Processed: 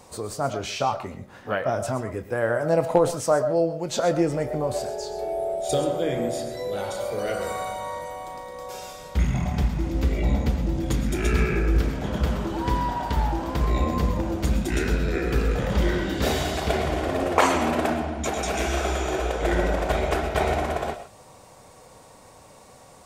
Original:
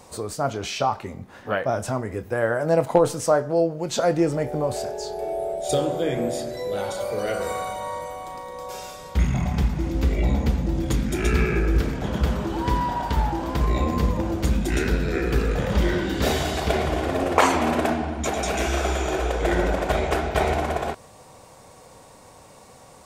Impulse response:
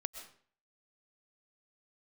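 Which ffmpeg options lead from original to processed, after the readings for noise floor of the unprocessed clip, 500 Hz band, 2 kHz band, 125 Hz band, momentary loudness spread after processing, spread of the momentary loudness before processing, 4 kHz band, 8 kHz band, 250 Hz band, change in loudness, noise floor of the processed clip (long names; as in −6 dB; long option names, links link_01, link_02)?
−48 dBFS, −1.0 dB, −1.5 dB, −1.0 dB, 8 LU, 8 LU, −1.0 dB, −1.0 dB, −1.5 dB, −1.0 dB, −49 dBFS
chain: -filter_complex "[1:a]atrim=start_sample=2205,atrim=end_sample=6174[link_01];[0:a][link_01]afir=irnorm=-1:irlink=0"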